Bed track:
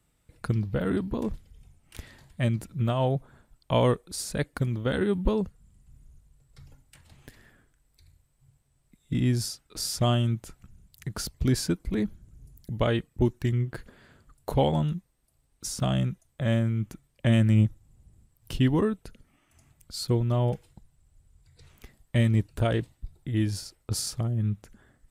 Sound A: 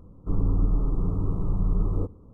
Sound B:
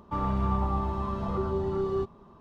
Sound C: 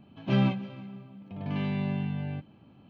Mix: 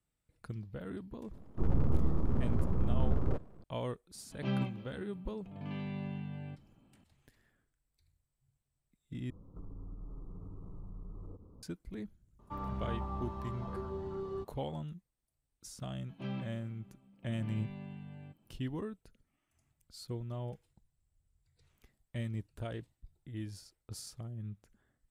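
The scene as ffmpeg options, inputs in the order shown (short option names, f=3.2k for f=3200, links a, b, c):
-filter_complex "[1:a]asplit=2[a][b];[3:a]asplit=2[c][d];[0:a]volume=-15.5dB[e];[a]aeval=exprs='abs(val(0))':c=same[f];[b]acompressor=threshold=-37dB:ratio=6:attack=3.2:release=140:knee=1:detection=peak[g];[e]asplit=2[h][i];[h]atrim=end=9.304[j];[g]atrim=end=2.33,asetpts=PTS-STARTPTS,volume=-6.5dB[k];[i]atrim=start=11.626[l];[f]atrim=end=2.33,asetpts=PTS-STARTPTS,volume=-3.5dB,afade=t=in:d=0.004:c=hsin,afade=t=out:st=2.326:d=0.004:c=hsin,adelay=1310[m];[c]atrim=end=2.89,asetpts=PTS-STARTPTS,volume=-9.5dB,afade=t=in:d=0.004:c=hsin,afade=t=out:st=2.886:d=0.004:c=hsin,adelay=4150[n];[2:a]atrim=end=2.4,asetpts=PTS-STARTPTS,volume=-11dB,afade=t=in:d=0.004:c=hsin,afade=t=out:st=2.396:d=0.004:c=hsin,adelay=12390[o];[d]atrim=end=2.89,asetpts=PTS-STARTPTS,volume=-15.5dB,afade=t=in:d=0.004:c=hsin,afade=t=out:st=2.886:d=0.004:c=hsin,adelay=15920[p];[j][k]acrossfade=d=0.004:c1=hsin:c2=hsin[q];[q][l]acrossfade=d=0.004:c1=hsin:c2=hsin[r];[r][m][n][o][p]amix=inputs=5:normalize=0"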